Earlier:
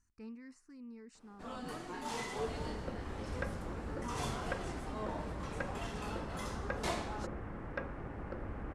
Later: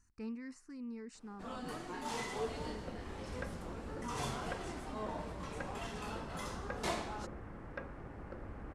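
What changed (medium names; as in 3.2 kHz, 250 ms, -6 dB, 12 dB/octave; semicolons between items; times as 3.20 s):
speech +5.5 dB; second sound -4.5 dB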